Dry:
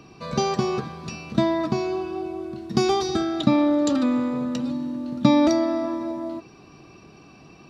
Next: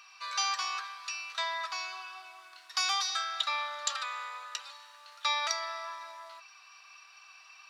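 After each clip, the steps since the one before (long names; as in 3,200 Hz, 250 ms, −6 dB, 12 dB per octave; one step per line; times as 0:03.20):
inverse Chebyshev high-pass filter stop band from 260 Hz, stop band 70 dB
level +1.5 dB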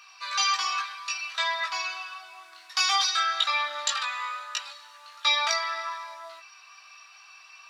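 dynamic equaliser 2,500 Hz, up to +4 dB, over −45 dBFS, Q 0.74
multi-voice chorus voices 4, 0.41 Hz, delay 19 ms, depth 2.3 ms
level +7 dB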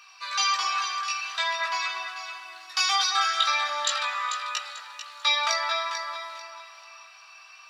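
delay that swaps between a low-pass and a high-pass 221 ms, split 1,700 Hz, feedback 55%, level −3 dB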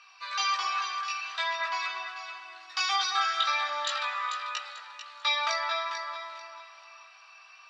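high-frequency loss of the air 100 metres
level −2 dB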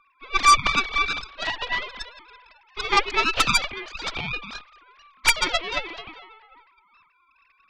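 three sine waves on the formant tracks
harmonic generator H 6 −11 dB, 7 −15 dB, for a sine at −14 dBFS
level +7 dB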